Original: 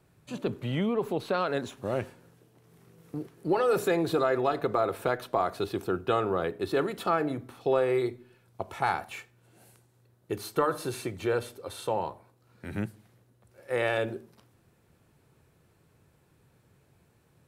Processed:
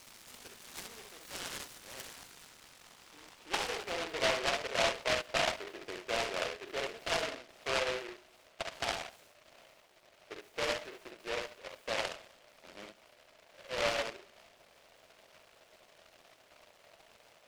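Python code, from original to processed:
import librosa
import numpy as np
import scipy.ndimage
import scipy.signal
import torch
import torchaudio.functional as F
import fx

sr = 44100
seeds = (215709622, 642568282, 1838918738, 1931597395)

p1 = x + 0.5 * 10.0 ** (-21.5 / 20.0) * np.diff(np.sign(x), prepend=np.sign(x[:1]))
p2 = scipy.signal.sosfilt(scipy.signal.butter(4, 170.0, 'highpass', fs=sr, output='sos'), p1)
p3 = fx.high_shelf(p2, sr, hz=7700.0, db=-10.5)
p4 = p3 + fx.echo_multitap(p3, sr, ms=(45, 67), db=(-8.5, -4.5), dry=0)
p5 = fx.filter_sweep_bandpass(p4, sr, from_hz=1800.0, to_hz=630.0, start_s=2.21, end_s=4.21, q=6.4)
y = fx.noise_mod_delay(p5, sr, seeds[0], noise_hz=1800.0, depth_ms=0.24)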